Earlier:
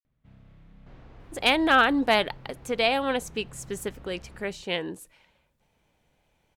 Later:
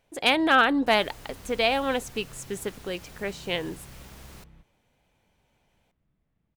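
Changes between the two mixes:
speech: entry -1.20 s; second sound: remove tape spacing loss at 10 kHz 42 dB

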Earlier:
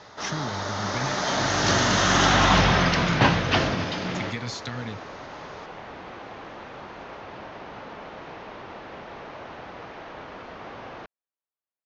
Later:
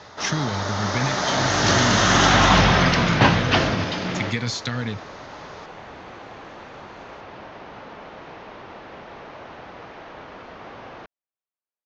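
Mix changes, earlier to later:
speech +7.0 dB; first sound +3.0 dB

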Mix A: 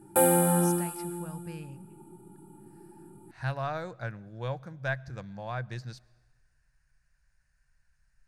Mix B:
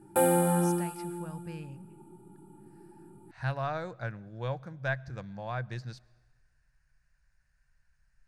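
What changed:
background: send off; master: add treble shelf 8.4 kHz -8 dB

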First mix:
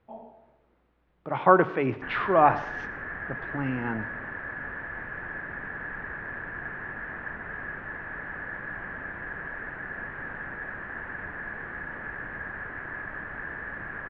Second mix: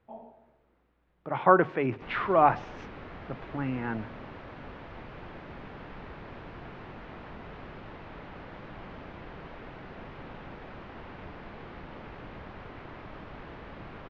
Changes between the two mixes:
background: remove resonant low-pass 1.7 kHz, resonance Q 15; reverb: off

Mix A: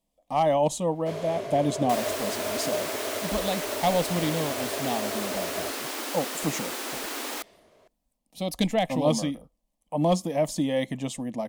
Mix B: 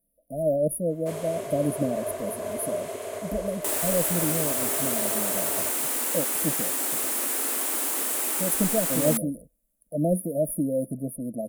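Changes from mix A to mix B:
speech: add brick-wall FIR band-stop 690–9500 Hz; second sound: entry +1.75 s; master: add resonant high shelf 6.8 kHz +10.5 dB, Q 1.5

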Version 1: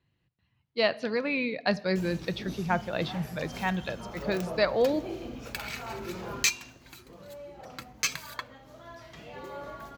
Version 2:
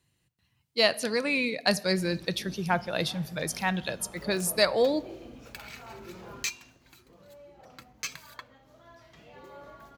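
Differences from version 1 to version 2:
speech: remove distance through air 240 m; background -7.0 dB

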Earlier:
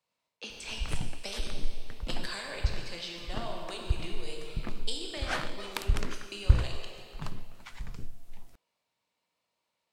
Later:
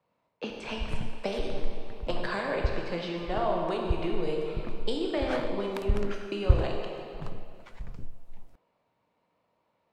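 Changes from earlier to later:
speech: remove pre-emphasis filter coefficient 0.8; master: add treble shelf 2.1 kHz -12 dB

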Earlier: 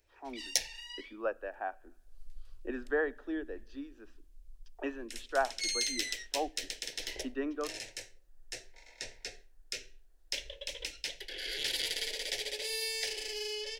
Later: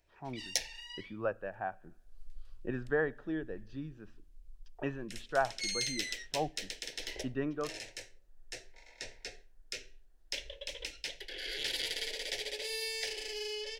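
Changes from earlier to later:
speech: remove steep high-pass 240 Hz 72 dB/octave; master: add treble shelf 5.3 kHz -5.5 dB

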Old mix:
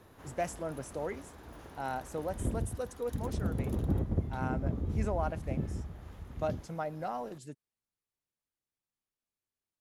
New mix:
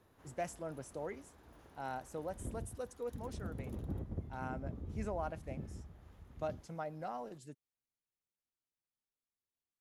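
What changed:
speech -5.5 dB; background -10.5 dB

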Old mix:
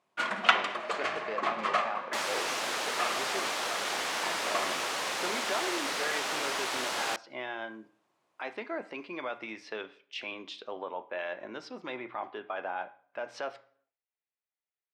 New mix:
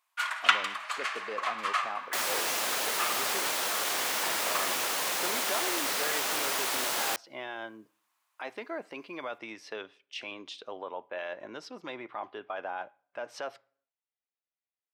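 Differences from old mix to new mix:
speech: send -10.5 dB; first sound: add high-pass 970 Hz 24 dB/octave; master: remove distance through air 61 m

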